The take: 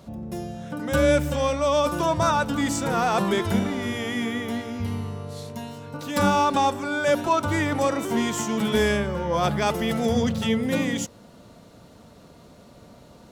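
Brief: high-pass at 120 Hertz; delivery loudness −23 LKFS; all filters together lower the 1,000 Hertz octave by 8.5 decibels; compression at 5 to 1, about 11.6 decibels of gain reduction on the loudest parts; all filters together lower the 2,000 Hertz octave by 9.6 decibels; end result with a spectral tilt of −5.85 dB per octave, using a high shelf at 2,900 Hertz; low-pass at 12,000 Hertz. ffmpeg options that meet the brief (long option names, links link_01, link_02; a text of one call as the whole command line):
ffmpeg -i in.wav -af "highpass=120,lowpass=12000,equalizer=frequency=1000:width_type=o:gain=-8.5,equalizer=frequency=2000:width_type=o:gain=-7.5,highshelf=frequency=2900:gain=-5.5,acompressor=threshold=-32dB:ratio=5,volume=12.5dB" out.wav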